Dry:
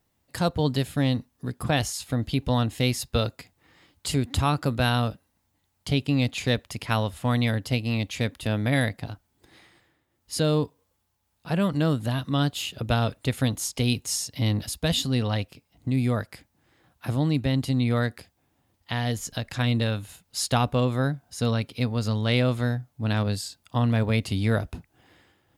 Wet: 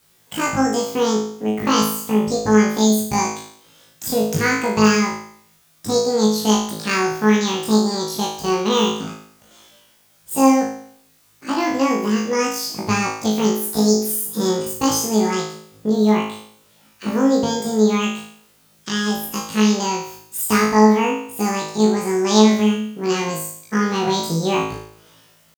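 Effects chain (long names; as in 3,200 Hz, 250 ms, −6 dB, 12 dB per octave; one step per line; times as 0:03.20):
pitch shifter +9.5 semitones
background noise white −64 dBFS
flutter between parallel walls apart 3.2 metres, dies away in 0.61 s
level +2 dB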